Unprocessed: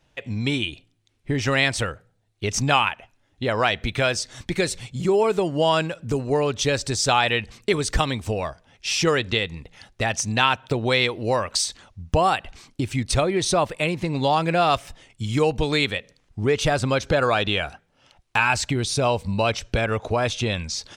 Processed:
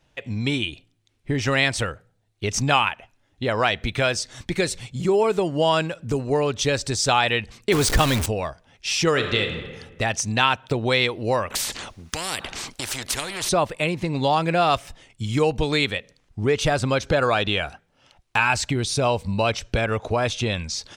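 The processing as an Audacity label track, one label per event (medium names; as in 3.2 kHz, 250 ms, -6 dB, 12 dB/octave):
7.720000	8.260000	jump at every zero crossing of -19.5 dBFS
9.100000	9.580000	reverb throw, RT60 1.4 s, DRR 4.5 dB
11.500000	13.490000	spectrum-flattening compressor 4:1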